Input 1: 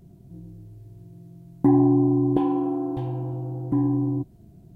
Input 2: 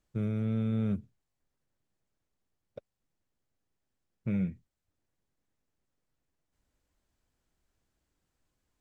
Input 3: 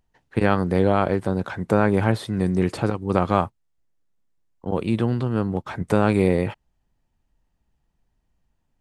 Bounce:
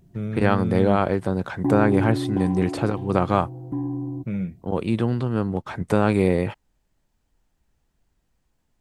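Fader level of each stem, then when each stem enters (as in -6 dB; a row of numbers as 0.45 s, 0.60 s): -5.5 dB, +3.0 dB, -0.5 dB; 0.00 s, 0.00 s, 0.00 s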